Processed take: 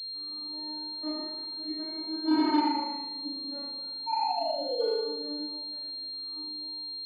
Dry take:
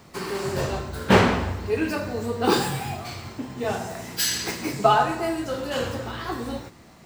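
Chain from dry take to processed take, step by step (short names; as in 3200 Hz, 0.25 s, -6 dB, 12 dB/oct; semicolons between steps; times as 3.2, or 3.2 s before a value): vocoder on a gliding note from C#4, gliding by +3 st; Doppler pass-by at 2.56, 25 m/s, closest 3.2 m; painted sound fall, 4.06–4.88, 420–930 Hz -35 dBFS; flutter echo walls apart 6.4 m, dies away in 0.66 s; FDN reverb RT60 1 s, low-frequency decay 1.25×, high-frequency decay 0.65×, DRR -6 dB; pulse-width modulation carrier 4200 Hz; gain -5.5 dB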